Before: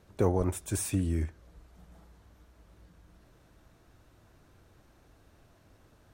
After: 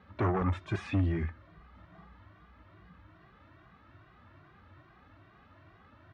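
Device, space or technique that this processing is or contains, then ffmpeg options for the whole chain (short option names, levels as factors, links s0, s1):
barber-pole flanger into a guitar amplifier: -filter_complex "[0:a]asplit=2[s0][s1];[s1]adelay=2,afreqshift=2.4[s2];[s0][s2]amix=inputs=2:normalize=1,asoftclip=type=tanh:threshold=0.0376,highpass=78,equalizer=f=90:t=q:w=4:g=4,equalizer=f=470:t=q:w=4:g=-8,equalizer=f=1200:t=q:w=4:g=9,equalizer=f=1900:t=q:w=4:g=6,lowpass=f=3600:w=0.5412,lowpass=f=3600:w=1.3066,volume=2"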